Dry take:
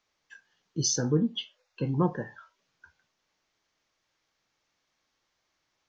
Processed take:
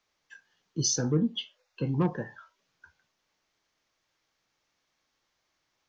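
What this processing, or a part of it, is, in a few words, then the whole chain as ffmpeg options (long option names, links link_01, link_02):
one-band saturation: -filter_complex "[0:a]acrossover=split=330|2800[link_01][link_02][link_03];[link_02]asoftclip=type=tanh:threshold=-26.5dB[link_04];[link_01][link_04][link_03]amix=inputs=3:normalize=0"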